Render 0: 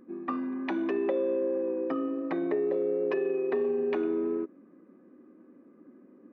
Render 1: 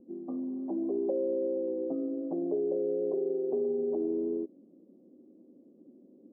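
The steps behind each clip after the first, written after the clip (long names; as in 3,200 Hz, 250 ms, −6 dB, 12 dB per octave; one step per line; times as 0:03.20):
Butterworth low-pass 710 Hz 36 dB per octave
level −2 dB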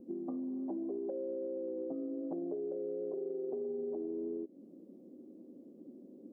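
downward compressor 6 to 1, threshold −40 dBFS, peak gain reduction 13 dB
level +3.5 dB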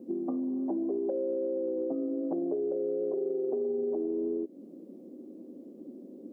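high-pass filter 180 Hz
level +7.5 dB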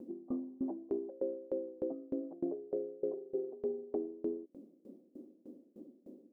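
tremolo with a ramp in dB decaying 3.3 Hz, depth 26 dB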